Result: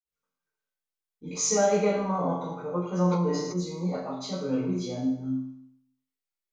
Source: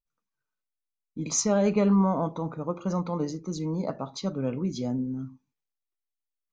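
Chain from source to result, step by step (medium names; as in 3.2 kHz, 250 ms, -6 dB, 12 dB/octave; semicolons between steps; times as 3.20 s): reverberation RT60 0.75 s, pre-delay 46 ms; 3.01–3.61 s: decay stretcher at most 40 dB/s; trim -1 dB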